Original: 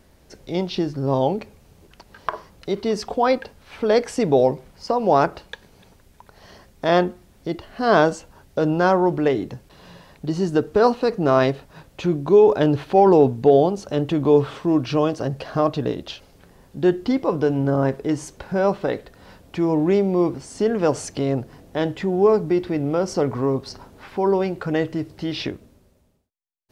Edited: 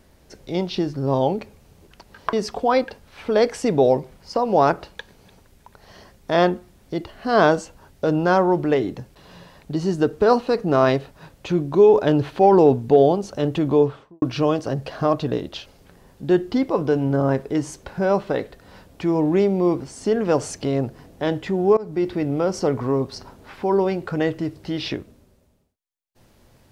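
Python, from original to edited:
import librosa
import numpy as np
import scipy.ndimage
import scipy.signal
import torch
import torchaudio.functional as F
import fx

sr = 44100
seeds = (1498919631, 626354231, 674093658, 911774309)

y = fx.studio_fade_out(x, sr, start_s=14.2, length_s=0.56)
y = fx.edit(y, sr, fx.cut(start_s=2.33, length_s=0.54),
    fx.fade_in_from(start_s=22.31, length_s=0.31, floor_db=-23.0), tone=tone)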